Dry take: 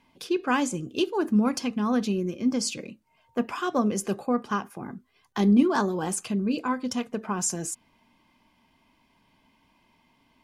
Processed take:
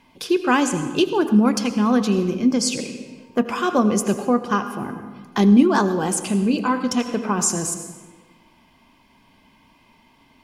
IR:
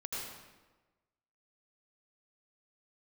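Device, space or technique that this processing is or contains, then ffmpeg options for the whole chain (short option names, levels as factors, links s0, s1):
ducked reverb: -filter_complex "[0:a]asplit=3[s0][s1][s2];[1:a]atrim=start_sample=2205[s3];[s1][s3]afir=irnorm=-1:irlink=0[s4];[s2]apad=whole_len=459965[s5];[s4][s5]sidechaincompress=threshold=0.0501:ratio=8:attack=16:release=1290,volume=0.708[s6];[s0][s6]amix=inputs=2:normalize=0,volume=1.78"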